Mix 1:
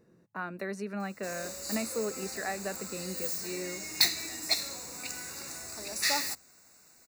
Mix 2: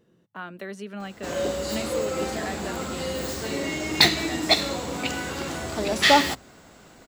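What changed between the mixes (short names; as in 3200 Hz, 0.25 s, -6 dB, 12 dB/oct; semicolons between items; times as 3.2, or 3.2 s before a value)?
background: remove pre-emphasis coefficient 0.9; master: remove Butterworth band-stop 3200 Hz, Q 2.6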